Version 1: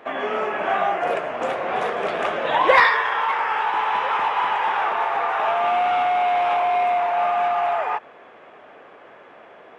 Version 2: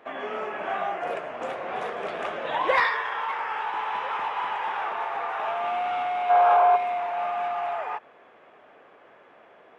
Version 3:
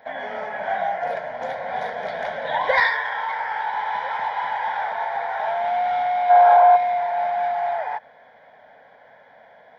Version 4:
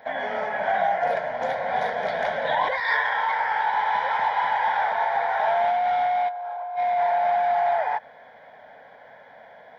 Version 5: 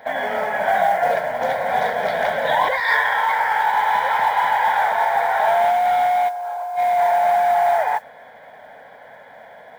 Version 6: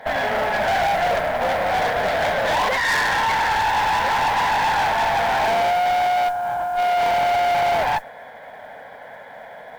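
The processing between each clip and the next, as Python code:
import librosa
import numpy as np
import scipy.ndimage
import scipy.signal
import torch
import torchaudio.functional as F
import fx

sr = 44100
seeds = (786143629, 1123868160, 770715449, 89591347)

y1 = fx.spec_box(x, sr, start_s=6.3, length_s=0.46, low_hz=370.0, high_hz=1700.0, gain_db=10)
y1 = F.gain(torch.from_numpy(y1), -7.5).numpy()
y2 = fx.fixed_phaser(y1, sr, hz=1800.0, stages=8)
y2 = F.gain(torch.from_numpy(y2), 6.0).numpy()
y3 = fx.over_compress(y2, sr, threshold_db=-23.0, ratio=-1.0)
y4 = fx.mod_noise(y3, sr, seeds[0], snr_db=29)
y4 = F.gain(torch.from_numpy(y4), 5.0).numpy()
y5 = fx.tube_stage(y4, sr, drive_db=23.0, bias=0.55)
y5 = F.gain(torch.from_numpy(y5), 6.0).numpy()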